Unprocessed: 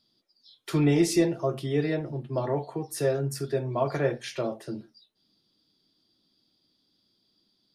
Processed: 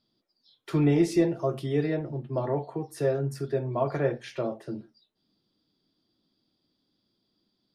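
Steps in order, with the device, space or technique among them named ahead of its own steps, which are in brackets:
0:01.35–0:01.86: high-shelf EQ 3,600 Hz → 6,100 Hz +9.5 dB
through cloth (high-shelf EQ 3,200 Hz −11 dB)

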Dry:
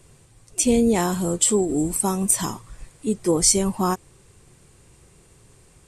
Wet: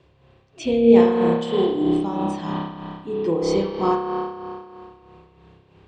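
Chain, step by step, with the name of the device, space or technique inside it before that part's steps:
combo amplifier with spring reverb and tremolo (spring reverb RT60 2.4 s, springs 30 ms, chirp 25 ms, DRR −4 dB; amplitude tremolo 3.1 Hz, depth 55%; loudspeaker in its box 81–3,800 Hz, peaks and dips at 110 Hz −5 dB, 220 Hz −7 dB, 1,400 Hz −4 dB, 2,100 Hz −5 dB)

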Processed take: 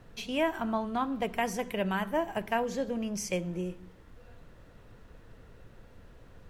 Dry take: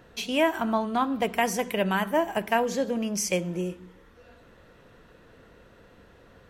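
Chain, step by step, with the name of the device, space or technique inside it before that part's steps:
car interior (parametric band 110 Hz +8 dB 0.77 octaves; high-shelf EQ 4,900 Hz −4.5 dB; brown noise bed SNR 18 dB)
level −5.5 dB

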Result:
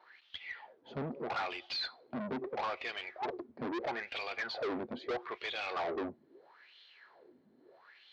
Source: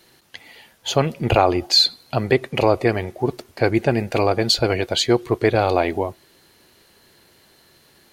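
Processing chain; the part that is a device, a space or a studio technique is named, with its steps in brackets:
wah-wah guitar rig (LFO wah 0.77 Hz 210–3,300 Hz, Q 5.6; tube saturation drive 41 dB, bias 0.25; loudspeaker in its box 92–4,500 Hz, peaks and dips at 110 Hz −10 dB, 190 Hz −10 dB, 310 Hz −4 dB, 2,800 Hz −5 dB)
level +9 dB

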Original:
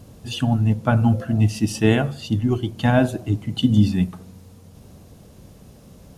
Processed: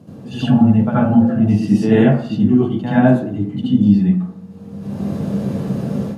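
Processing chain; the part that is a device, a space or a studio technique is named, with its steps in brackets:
spectral tilt −3.5 dB per octave
hum removal 59.55 Hz, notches 37
far laptop microphone (convolution reverb RT60 0.40 s, pre-delay 71 ms, DRR −10 dB; high-pass filter 160 Hz 24 dB per octave; automatic gain control gain up to 12 dB)
level −1 dB

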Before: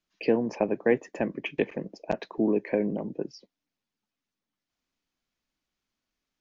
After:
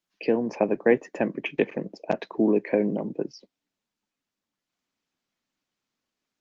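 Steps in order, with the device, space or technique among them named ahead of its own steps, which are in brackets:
video call (high-pass filter 130 Hz 12 dB per octave; automatic gain control gain up to 3.5 dB; Opus 24 kbit/s 48,000 Hz)

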